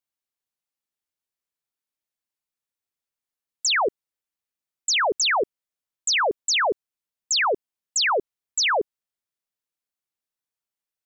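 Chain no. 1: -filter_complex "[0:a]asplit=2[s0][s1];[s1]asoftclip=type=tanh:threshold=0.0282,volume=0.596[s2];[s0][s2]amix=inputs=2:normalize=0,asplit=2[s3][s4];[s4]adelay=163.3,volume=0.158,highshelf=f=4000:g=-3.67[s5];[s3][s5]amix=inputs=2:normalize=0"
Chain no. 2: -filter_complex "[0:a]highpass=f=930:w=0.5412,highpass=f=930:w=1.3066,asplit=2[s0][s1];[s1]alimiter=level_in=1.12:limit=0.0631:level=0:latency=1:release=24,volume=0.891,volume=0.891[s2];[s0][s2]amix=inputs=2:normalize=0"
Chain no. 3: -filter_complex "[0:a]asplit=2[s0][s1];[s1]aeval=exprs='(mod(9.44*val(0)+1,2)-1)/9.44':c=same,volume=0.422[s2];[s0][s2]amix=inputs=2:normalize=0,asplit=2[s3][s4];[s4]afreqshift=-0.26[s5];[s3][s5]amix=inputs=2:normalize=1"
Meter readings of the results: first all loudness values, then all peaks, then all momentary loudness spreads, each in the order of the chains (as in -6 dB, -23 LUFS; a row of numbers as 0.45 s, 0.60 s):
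-21.5 LUFS, -20.0 LUFS, -25.5 LUFS; -15.5 dBFS, -15.0 dBFS, -15.5 dBFS; 10 LU, 8 LU, 9 LU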